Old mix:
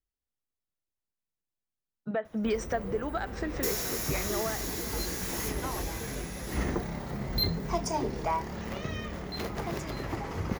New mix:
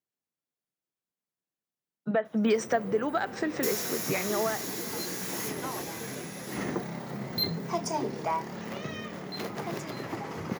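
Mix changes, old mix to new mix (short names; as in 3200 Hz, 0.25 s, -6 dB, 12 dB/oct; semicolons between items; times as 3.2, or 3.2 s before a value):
speech +4.5 dB; master: add HPF 130 Hz 24 dB/oct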